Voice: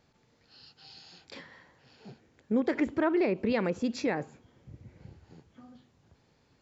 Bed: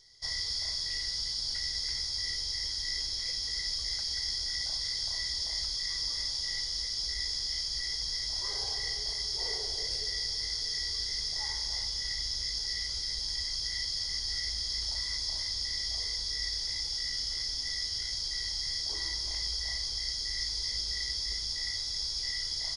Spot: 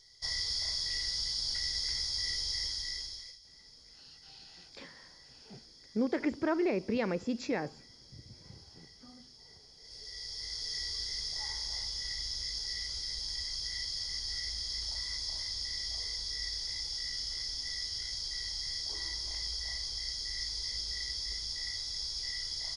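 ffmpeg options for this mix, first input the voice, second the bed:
ffmpeg -i stem1.wav -i stem2.wav -filter_complex "[0:a]adelay=3450,volume=-3.5dB[link_01];[1:a]volume=19dB,afade=type=out:start_time=2.59:duration=0.8:silence=0.0749894,afade=type=in:start_time=9.79:duration=0.97:silence=0.105925[link_02];[link_01][link_02]amix=inputs=2:normalize=0" out.wav

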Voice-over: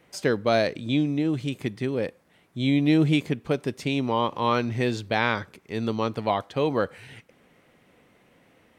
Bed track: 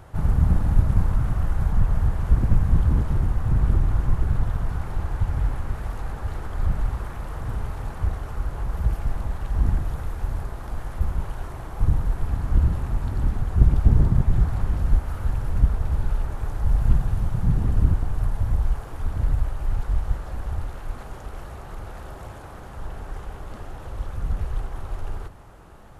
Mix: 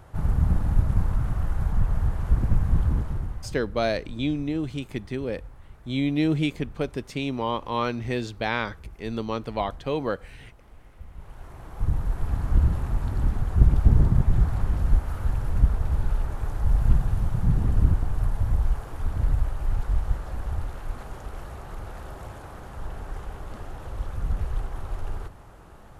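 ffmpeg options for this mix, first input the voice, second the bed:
ffmpeg -i stem1.wav -i stem2.wav -filter_complex "[0:a]adelay=3300,volume=-3dB[link_01];[1:a]volume=15.5dB,afade=type=out:start_time=2.84:duration=0.72:silence=0.149624,afade=type=in:start_time=11.1:duration=1.27:silence=0.11885[link_02];[link_01][link_02]amix=inputs=2:normalize=0" out.wav

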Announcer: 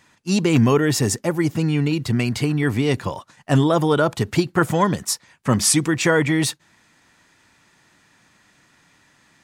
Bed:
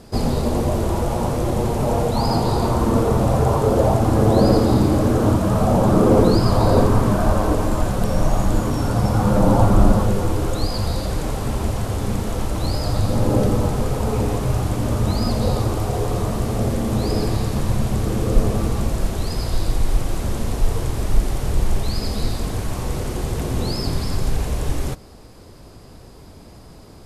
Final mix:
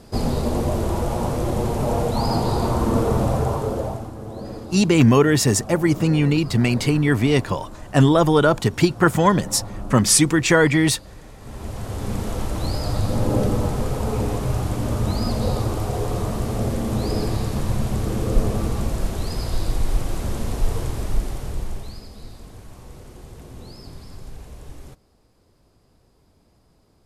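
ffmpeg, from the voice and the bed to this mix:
ffmpeg -i stem1.wav -i stem2.wav -filter_complex "[0:a]adelay=4450,volume=2dB[link_01];[1:a]volume=14.5dB,afade=type=out:start_time=3.19:duration=0.94:silence=0.141254,afade=type=in:start_time=11.38:duration=0.85:silence=0.149624,afade=type=out:start_time=20.79:duration=1.29:silence=0.188365[link_02];[link_01][link_02]amix=inputs=2:normalize=0" out.wav

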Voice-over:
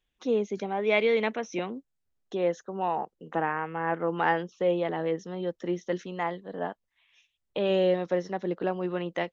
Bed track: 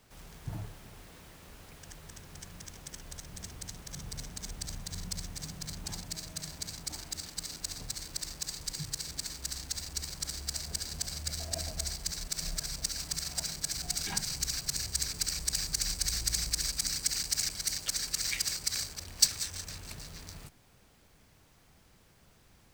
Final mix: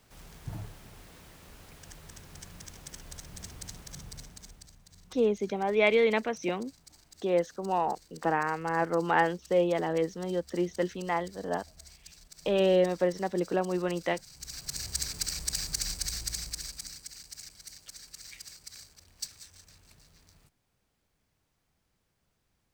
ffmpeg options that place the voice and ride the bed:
ffmpeg -i stem1.wav -i stem2.wav -filter_complex "[0:a]adelay=4900,volume=0.5dB[link_01];[1:a]volume=16dB,afade=type=out:start_time=3.75:duration=0.97:silence=0.149624,afade=type=in:start_time=14.33:duration=0.59:silence=0.158489,afade=type=out:start_time=15.77:duration=1.31:silence=0.199526[link_02];[link_01][link_02]amix=inputs=2:normalize=0" out.wav

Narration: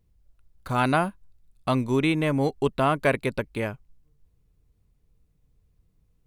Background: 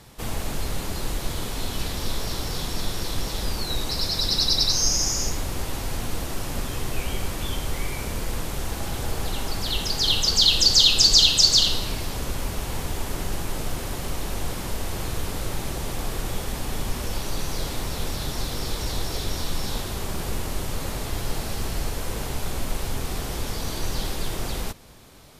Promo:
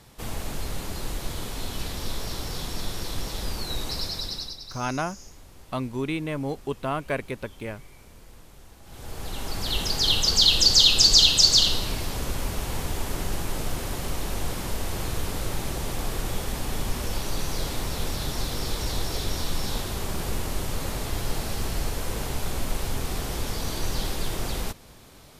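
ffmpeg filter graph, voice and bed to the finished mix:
ffmpeg -i stem1.wav -i stem2.wav -filter_complex "[0:a]adelay=4050,volume=-6dB[link_01];[1:a]volume=16.5dB,afade=type=out:start_time=3.93:duration=0.65:silence=0.141254,afade=type=in:start_time=8.84:duration=0.94:silence=0.1[link_02];[link_01][link_02]amix=inputs=2:normalize=0" out.wav

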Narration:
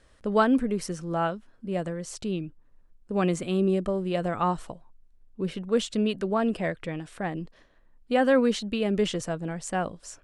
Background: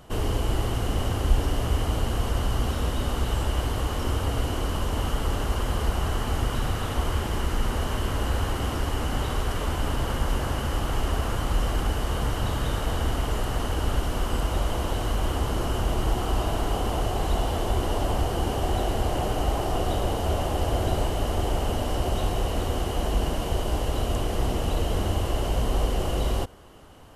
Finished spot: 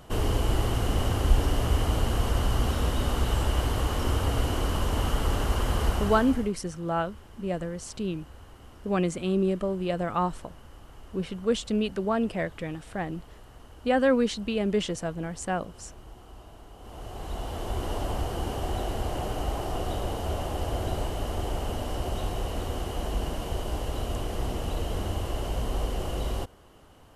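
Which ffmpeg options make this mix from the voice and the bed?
ffmpeg -i stem1.wav -i stem2.wav -filter_complex "[0:a]adelay=5750,volume=-1dB[link_01];[1:a]volume=17.5dB,afade=type=out:start_time=5.88:duration=0.65:silence=0.0749894,afade=type=in:start_time=16.77:duration=1.14:silence=0.133352[link_02];[link_01][link_02]amix=inputs=2:normalize=0" out.wav

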